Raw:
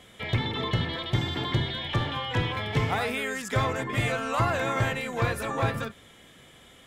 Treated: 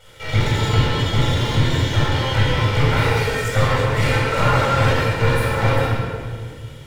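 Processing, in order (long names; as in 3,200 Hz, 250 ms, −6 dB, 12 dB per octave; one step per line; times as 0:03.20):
lower of the sound and its delayed copy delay 2.1 ms
convolution reverb RT60 1.9 s, pre-delay 19 ms, DRR −6 dB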